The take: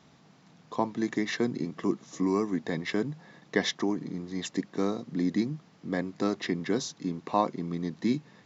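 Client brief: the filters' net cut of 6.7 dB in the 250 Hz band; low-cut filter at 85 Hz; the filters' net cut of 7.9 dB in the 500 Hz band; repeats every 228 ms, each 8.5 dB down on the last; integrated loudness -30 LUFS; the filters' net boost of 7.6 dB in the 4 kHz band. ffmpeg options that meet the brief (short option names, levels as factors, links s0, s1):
-af "highpass=85,equalizer=f=250:t=o:g=-6,equalizer=f=500:t=o:g=-8.5,equalizer=f=4000:t=o:g=9,aecho=1:1:228|456|684|912:0.376|0.143|0.0543|0.0206,volume=1.41"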